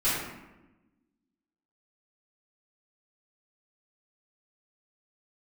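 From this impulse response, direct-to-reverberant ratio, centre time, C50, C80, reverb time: -14.0 dB, 75 ms, -0.5 dB, 2.5 dB, 1.0 s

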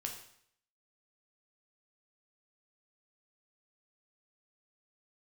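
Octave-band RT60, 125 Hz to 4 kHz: 0.70 s, 0.65 s, 0.65 s, 0.65 s, 0.65 s, 0.65 s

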